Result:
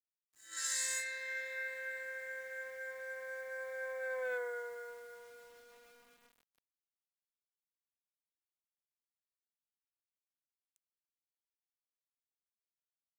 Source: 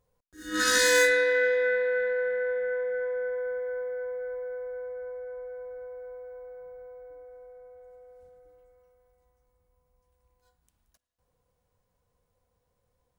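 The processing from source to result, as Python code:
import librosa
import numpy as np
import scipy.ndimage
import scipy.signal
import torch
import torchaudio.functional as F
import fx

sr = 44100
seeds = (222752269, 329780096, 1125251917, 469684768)

y = fx.doppler_pass(x, sr, speed_mps=16, closest_m=2.6, pass_at_s=4.32)
y = scipy.signal.sosfilt(scipy.signal.butter(2, 1100.0, 'highpass', fs=sr, output='sos'), y)
y = fx.high_shelf(y, sr, hz=2100.0, db=5.5)
y = fx.leveller(y, sr, passes=1)
y = fx.peak_eq(y, sr, hz=7600.0, db=12.0, octaves=0.48)
y = fx.quant_dither(y, sr, seeds[0], bits=12, dither='none')
y = fx.rider(y, sr, range_db=3, speed_s=0.5)
y = y * librosa.db_to_amplitude(6.5)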